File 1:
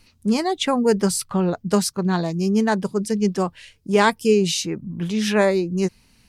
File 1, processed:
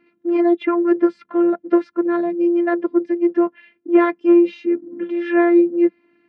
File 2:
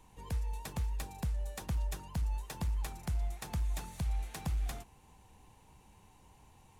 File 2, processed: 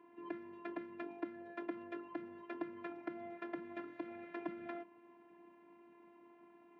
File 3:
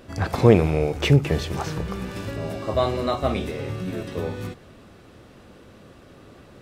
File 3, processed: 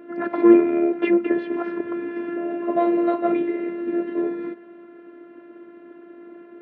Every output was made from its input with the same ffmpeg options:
-af "acontrast=85,afftfilt=real='hypot(re,im)*cos(PI*b)':imag='0':win_size=512:overlap=0.75,highpass=frequency=180:width=0.5412,highpass=frequency=180:width=1.3066,equalizer=frequency=190:width_type=q:width=4:gain=8,equalizer=frequency=320:width_type=q:width=4:gain=4,equalizer=frequency=510:width_type=q:width=4:gain=7,equalizer=frequency=730:width_type=q:width=4:gain=-6,equalizer=frequency=1100:width_type=q:width=4:gain=-6,lowpass=frequency=2000:width=0.5412,lowpass=frequency=2000:width=1.3066"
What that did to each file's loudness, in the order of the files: +3.0, −8.5, +2.0 LU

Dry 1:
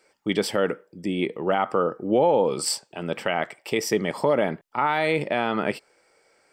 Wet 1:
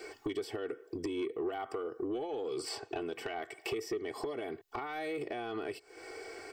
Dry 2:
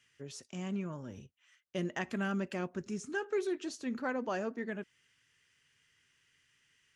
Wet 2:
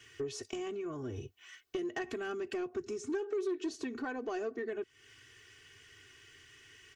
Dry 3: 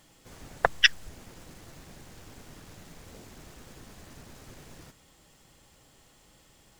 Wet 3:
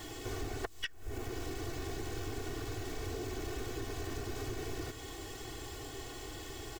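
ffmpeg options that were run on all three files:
-filter_complex "[0:a]acrossover=split=2900|7200[link_01][link_02][link_03];[link_01]acompressor=threshold=-36dB:ratio=4[link_04];[link_02]acompressor=threshold=-51dB:ratio=4[link_05];[link_03]acompressor=threshold=-54dB:ratio=4[link_06];[link_04][link_05][link_06]amix=inputs=3:normalize=0,equalizer=frequency=100:width_type=o:width=0.67:gain=6,equalizer=frequency=400:width_type=o:width=0.67:gain=7,equalizer=frequency=10000:width_type=o:width=0.67:gain=-6,acompressor=threshold=-50dB:ratio=4,aecho=1:1:2.7:0.97,asoftclip=type=tanh:threshold=-38dB,volume=11dB"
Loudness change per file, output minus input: −14.0, −1.0, −17.5 LU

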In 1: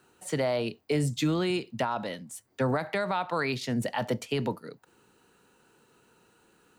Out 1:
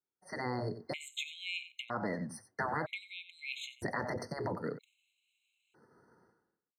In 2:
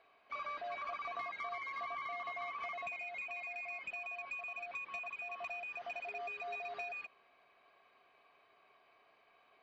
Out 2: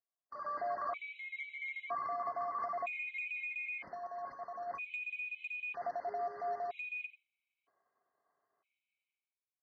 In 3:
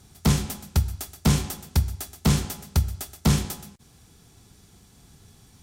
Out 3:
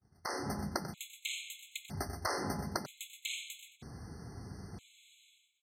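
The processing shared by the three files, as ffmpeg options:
-filter_complex "[0:a]afftfilt=real='re*lt(hypot(re,im),0.126)':imag='im*lt(hypot(re,im),0.126)':win_size=1024:overlap=0.75,aemphasis=mode=reproduction:type=75kf,dynaudnorm=framelen=110:gausssize=9:maxgain=12dB,agate=range=-33dB:threshold=-44dB:ratio=3:detection=peak,asplit=2[link_01][link_02];[link_02]aecho=0:1:91:0.188[link_03];[link_01][link_03]amix=inputs=2:normalize=0,acompressor=threshold=-30dB:ratio=2.5,adynamicequalizer=threshold=0.00355:dfrequency=4100:dqfactor=1.2:tfrequency=4100:tqfactor=1.2:attack=5:release=100:ratio=0.375:range=1.5:mode=cutabove:tftype=bell,highpass=64,afftfilt=real='re*gt(sin(2*PI*0.52*pts/sr)*(1-2*mod(floor(b*sr/1024/2100),2)),0)':imag='im*gt(sin(2*PI*0.52*pts/sr)*(1-2*mod(floor(b*sr/1024/2100),2)),0)':win_size=1024:overlap=0.75,volume=-3.5dB"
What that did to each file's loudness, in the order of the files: −9.0, +2.5, −15.0 LU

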